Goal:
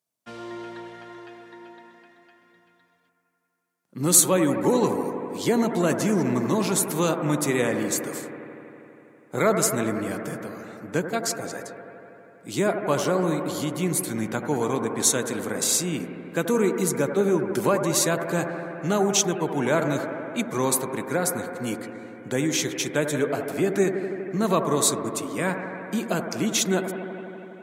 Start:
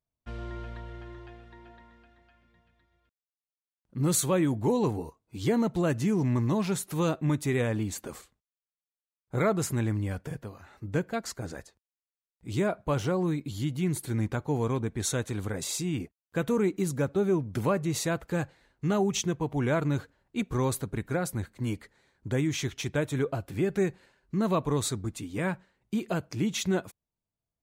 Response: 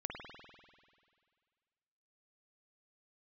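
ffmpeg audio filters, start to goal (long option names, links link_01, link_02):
-filter_complex "[0:a]highpass=frequency=150:width=0.5412,highpass=frequency=150:width=1.3066,asplit=2[link_01][link_02];[link_02]bass=frequency=250:gain=-10,treble=frequency=4000:gain=11[link_03];[1:a]atrim=start_sample=2205,asetrate=26901,aresample=44100[link_04];[link_03][link_04]afir=irnorm=-1:irlink=0,volume=0dB[link_05];[link_01][link_05]amix=inputs=2:normalize=0"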